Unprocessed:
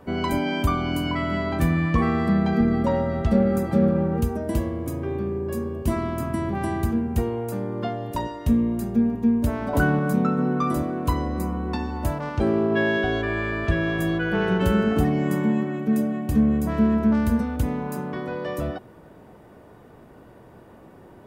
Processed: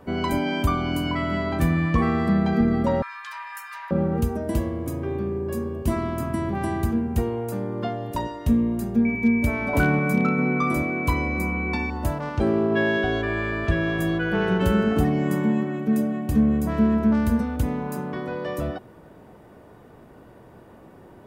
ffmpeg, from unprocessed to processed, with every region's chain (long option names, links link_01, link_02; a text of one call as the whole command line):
ffmpeg -i in.wav -filter_complex "[0:a]asettb=1/sr,asplit=3[link_01][link_02][link_03];[link_01]atrim=end=3.024[link_04];[link_02]atrim=start=3.02:end=3.91,asetpts=PTS-STARTPTS,afade=type=in:duration=0.004:curve=qsin,afade=type=out:start_time=0.886:duration=0.004:curve=qsin,highpass=frequency=830:width=0.5412,highpass=frequency=830:width=1.3066,afreqshift=410[link_05];[link_03]atrim=start=3.906[link_06];[link_04][link_05]acrossfade=duration=0.004:curve1=hsin:curve2=qsin[link_07];[link_07][link_06]acrossfade=duration=0.004:curve1=qsin:curve2=hsin,asettb=1/sr,asplit=3[link_08][link_09][link_10];[link_08]atrim=end=9.054[link_11];[link_09]atrim=start=9.05:end=11.9,asetpts=PTS-STARTPTS,afade=type=in:duration=0.004:curve=qsin,afade=type=out:start_time=2.846:duration=0.004:curve=qsin,aeval=exprs='val(0)+0.0355*sin(2*PI*2300*n/s)':channel_layout=same,asoftclip=type=hard:threshold=-11.5dB[link_12];[link_10]atrim=start=11.896[link_13];[link_11][link_12]acrossfade=duration=0.004:curve1=hsin:curve2=qsin[link_14];[link_14][link_13]acrossfade=duration=0.004:curve1=qsin:curve2=hsin" out.wav